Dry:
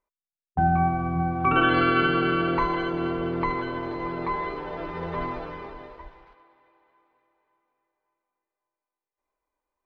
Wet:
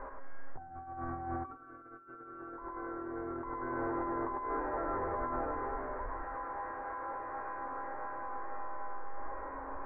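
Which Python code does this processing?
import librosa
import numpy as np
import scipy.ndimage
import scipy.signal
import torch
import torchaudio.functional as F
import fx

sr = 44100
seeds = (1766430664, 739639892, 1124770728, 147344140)

y = x + 0.5 * 10.0 ** (-29.5 / 20.0) * np.sign(x)
y = fx.comb_fb(y, sr, f0_hz=270.0, decay_s=0.81, harmonics='all', damping=0.0, mix_pct=90)
y = y + 10.0 ** (-5.5 / 20.0) * np.pad(y, (int(103 * sr / 1000.0), 0))[:len(y)]
y = fx.over_compress(y, sr, threshold_db=-44.0, ratio=-0.5)
y = scipy.signal.sosfilt(scipy.signal.butter(8, 1700.0, 'lowpass', fs=sr, output='sos'), y)
y = fx.peak_eq(y, sr, hz=170.0, db=-14.0, octaves=0.74)
y = F.gain(torch.from_numpy(y), 8.0).numpy()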